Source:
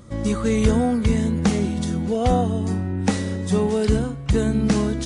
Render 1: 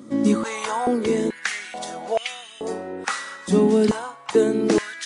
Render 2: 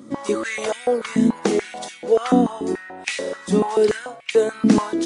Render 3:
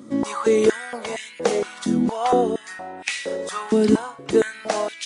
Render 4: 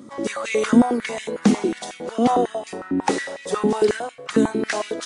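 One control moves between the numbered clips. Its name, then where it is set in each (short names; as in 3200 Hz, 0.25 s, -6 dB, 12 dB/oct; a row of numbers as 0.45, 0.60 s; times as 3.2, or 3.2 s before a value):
stepped high-pass, rate: 2.3, 6.9, 4.3, 11 Hz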